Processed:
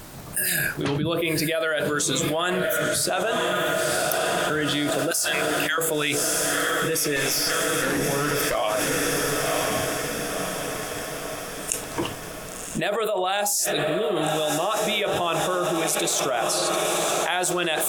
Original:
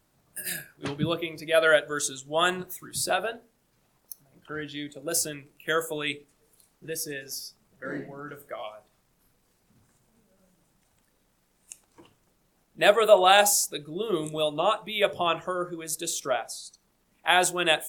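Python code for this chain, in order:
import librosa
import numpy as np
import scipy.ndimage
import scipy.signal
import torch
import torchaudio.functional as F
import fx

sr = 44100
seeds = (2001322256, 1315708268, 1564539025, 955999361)

p1 = fx.steep_highpass(x, sr, hz=840.0, slope=36, at=(5.11, 5.78))
p2 = fx.tube_stage(p1, sr, drive_db=36.0, bias=0.7, at=(7.16, 8.55))
p3 = p2 + fx.echo_diffused(p2, sr, ms=1041, feedback_pct=56, wet_db=-13.5, dry=0)
p4 = fx.env_flatten(p3, sr, amount_pct=100)
y = p4 * librosa.db_to_amplitude(-12.5)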